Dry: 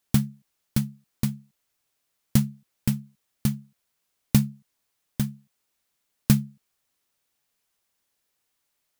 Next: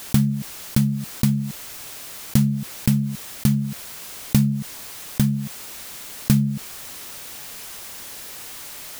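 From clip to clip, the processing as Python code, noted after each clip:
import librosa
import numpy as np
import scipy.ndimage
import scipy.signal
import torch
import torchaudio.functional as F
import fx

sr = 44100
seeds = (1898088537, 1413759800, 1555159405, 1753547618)

y = fx.env_flatten(x, sr, amount_pct=70)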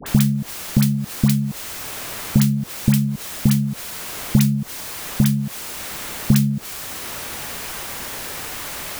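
y = fx.dispersion(x, sr, late='highs', ms=64.0, hz=1100.0)
y = fx.band_squash(y, sr, depth_pct=40)
y = y * 10.0 ** (4.0 / 20.0)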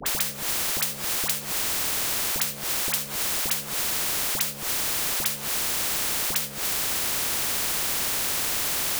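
y = fx.spectral_comp(x, sr, ratio=10.0)
y = y * 10.0 ** (-6.0 / 20.0)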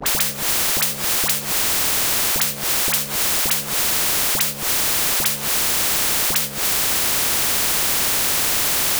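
y = fx.leveller(x, sr, passes=2)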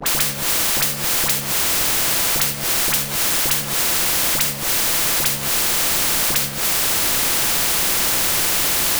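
y = fx.room_shoebox(x, sr, seeds[0], volume_m3=770.0, walls='mixed', distance_m=0.76)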